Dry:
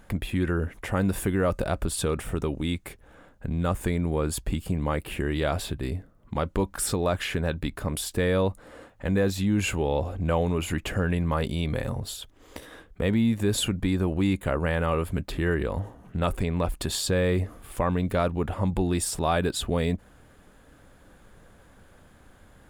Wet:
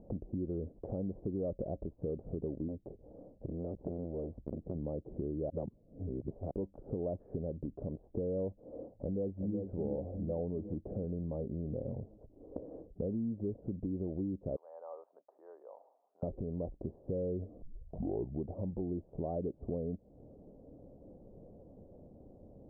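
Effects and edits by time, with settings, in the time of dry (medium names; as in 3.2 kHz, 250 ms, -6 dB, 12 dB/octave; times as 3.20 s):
2.68–4.75 s: transformer saturation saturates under 680 Hz
5.50–6.51 s: reverse
8.90–9.58 s: echo throw 370 ms, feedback 55%, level -5.5 dB
14.56–16.23 s: high-pass 990 Hz 24 dB/octave
17.62 s: tape start 0.87 s
whole clip: steep low-pass 630 Hz 36 dB/octave; compression 4:1, threshold -38 dBFS; bass shelf 97 Hz -11.5 dB; trim +4 dB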